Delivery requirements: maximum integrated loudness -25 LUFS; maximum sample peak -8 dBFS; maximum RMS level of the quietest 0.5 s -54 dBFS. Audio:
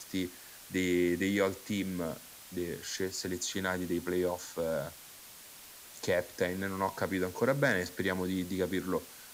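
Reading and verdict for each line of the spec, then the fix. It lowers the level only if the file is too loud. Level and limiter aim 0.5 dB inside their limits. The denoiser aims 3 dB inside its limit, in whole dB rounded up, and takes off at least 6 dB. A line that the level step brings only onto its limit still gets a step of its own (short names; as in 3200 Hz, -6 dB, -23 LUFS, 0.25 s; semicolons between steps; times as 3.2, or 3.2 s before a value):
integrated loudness -33.5 LUFS: OK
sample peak -14.5 dBFS: OK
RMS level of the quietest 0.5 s -51 dBFS: fail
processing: denoiser 6 dB, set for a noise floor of -51 dBFS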